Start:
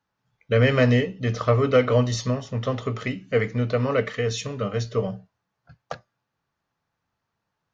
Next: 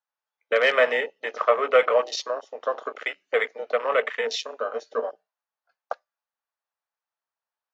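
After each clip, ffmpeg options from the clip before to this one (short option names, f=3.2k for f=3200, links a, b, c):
-af "highpass=f=540:w=0.5412,highpass=f=540:w=1.3066,afwtdn=0.02,volume=4.5dB"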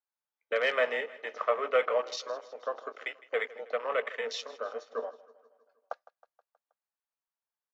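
-af "aecho=1:1:159|318|477|636|795:0.106|0.0614|0.0356|0.0207|0.012,volume=-8dB"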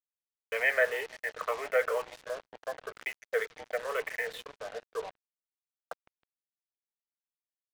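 -af "afftfilt=real='re*pow(10,9/40*sin(2*PI*(0.66*log(max(b,1)*sr/1024/100)/log(2)-(-2)*(pts-256)/sr)))':imag='im*pow(10,9/40*sin(2*PI*(0.66*log(max(b,1)*sr/1024/100)/log(2)-(-2)*(pts-256)/sr)))':win_size=1024:overlap=0.75,highpass=f=370:w=0.5412,highpass=f=370:w=1.3066,equalizer=f=550:t=q:w=4:g=-5,equalizer=f=1.2k:t=q:w=4:g=-9,equalizer=f=1.7k:t=q:w=4:g=4,lowpass=f=2.8k:w=0.5412,lowpass=f=2.8k:w=1.3066,acrusher=bits=6:mix=0:aa=0.5"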